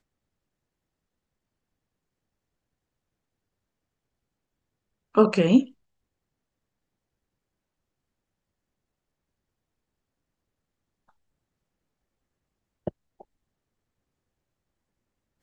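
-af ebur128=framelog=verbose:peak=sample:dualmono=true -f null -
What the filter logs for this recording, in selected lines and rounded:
Integrated loudness:
  I:         -18.1 LUFS
  Threshold: -31.6 LUFS
Loudness range:
  LRA:        21.1 LU
  Threshold: -46.9 LUFS
  LRA low:   -45.0 LUFS
  LRA high:  -23.9 LUFS
Sample peak:
  Peak:       -3.8 dBFS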